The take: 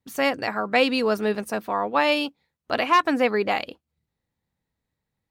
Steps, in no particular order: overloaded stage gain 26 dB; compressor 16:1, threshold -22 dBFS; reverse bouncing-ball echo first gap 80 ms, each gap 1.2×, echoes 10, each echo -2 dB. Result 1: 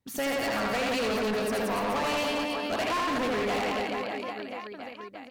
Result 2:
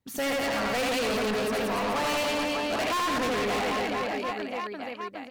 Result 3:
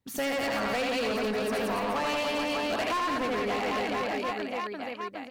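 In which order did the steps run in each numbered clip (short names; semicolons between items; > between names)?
compressor > reverse bouncing-ball echo > overloaded stage; reverse bouncing-ball echo > overloaded stage > compressor; reverse bouncing-ball echo > compressor > overloaded stage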